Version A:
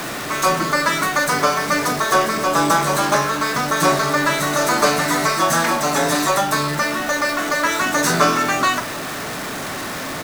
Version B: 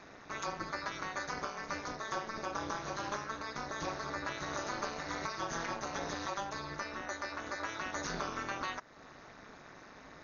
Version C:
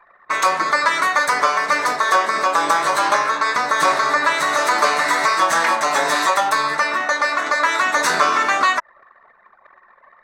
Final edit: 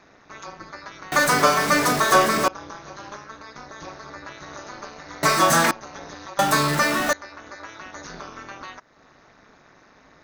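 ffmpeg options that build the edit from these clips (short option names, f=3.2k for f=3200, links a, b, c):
-filter_complex "[0:a]asplit=3[a][b][c];[1:a]asplit=4[d][e][f][g];[d]atrim=end=1.122[h];[a]atrim=start=1.118:end=2.482[i];[e]atrim=start=2.478:end=5.232[j];[b]atrim=start=5.228:end=5.712[k];[f]atrim=start=5.708:end=6.392[l];[c]atrim=start=6.388:end=7.132[m];[g]atrim=start=7.128[n];[h][i]acrossfade=d=0.004:c1=hsin:c2=hsin[o];[o][j]acrossfade=d=0.004:c1=hsin:c2=hsin[p];[p][k]acrossfade=d=0.004:c1=hsin:c2=hsin[q];[q][l]acrossfade=d=0.004:c1=hsin:c2=hsin[r];[r][m]acrossfade=d=0.004:c1=hsin:c2=hsin[s];[s][n]acrossfade=d=0.004:c1=hsin:c2=hsin"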